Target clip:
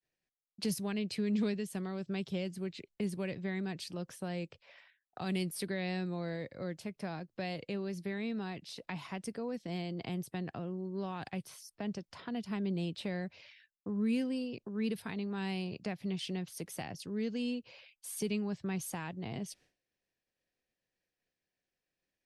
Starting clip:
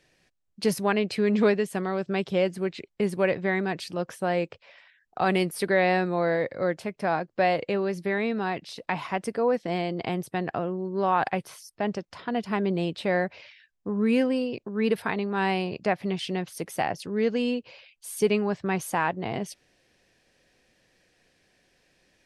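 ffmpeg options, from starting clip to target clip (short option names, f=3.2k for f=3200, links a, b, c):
-filter_complex "[0:a]acrossover=split=270|3000[a][b][c];[b]acompressor=threshold=-42dB:ratio=3[d];[a][d][c]amix=inputs=3:normalize=0,agate=range=-33dB:threshold=-53dB:ratio=3:detection=peak,volume=-5dB"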